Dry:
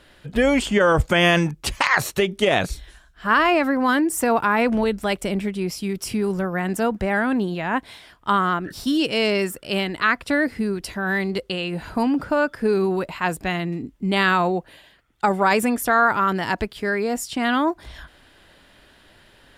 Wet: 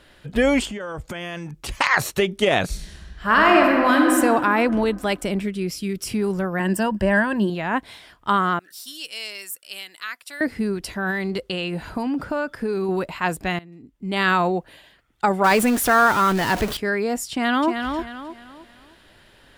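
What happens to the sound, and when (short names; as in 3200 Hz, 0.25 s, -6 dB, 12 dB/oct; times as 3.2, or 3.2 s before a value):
0.65–1.69 compressor, threshold -29 dBFS
2.65–4.13 reverb throw, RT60 2.2 s, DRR 0 dB
5.43–6.07 bell 870 Hz -13 dB 0.6 oct
6.59–7.5 ripple EQ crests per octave 1.3, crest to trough 11 dB
8.59–10.41 differentiator
11.1–12.89 compressor, threshold -20 dBFS
13.59–14.3 fade in quadratic, from -19 dB
15.44–16.77 zero-crossing step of -23.5 dBFS
17.31–17.71 echo throw 0.31 s, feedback 35%, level -6 dB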